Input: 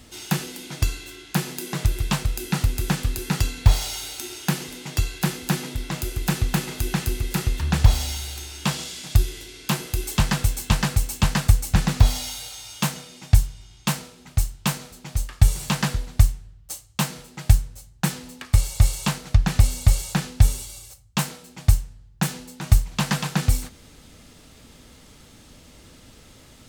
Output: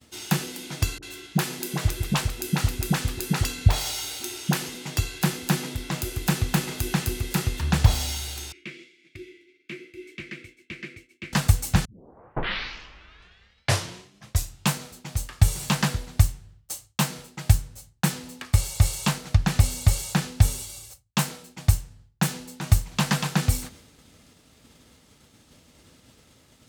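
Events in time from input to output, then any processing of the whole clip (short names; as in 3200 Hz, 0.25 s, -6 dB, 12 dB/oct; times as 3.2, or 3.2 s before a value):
0.98–4.75 dispersion highs, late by 46 ms, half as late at 530 Hz
8.52–11.33 double band-pass 870 Hz, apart 2.7 oct
11.85 tape start 2.87 s
whole clip: expander -42 dBFS; HPF 64 Hz 12 dB/oct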